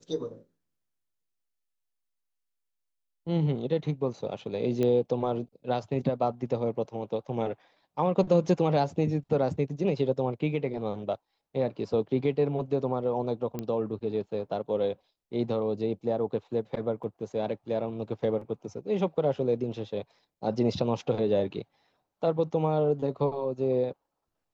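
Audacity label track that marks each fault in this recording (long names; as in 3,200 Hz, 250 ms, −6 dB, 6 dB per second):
4.830000	4.830000	click −17 dBFS
13.590000	13.590000	click −20 dBFS
17.030000	17.040000	drop-out 5.1 ms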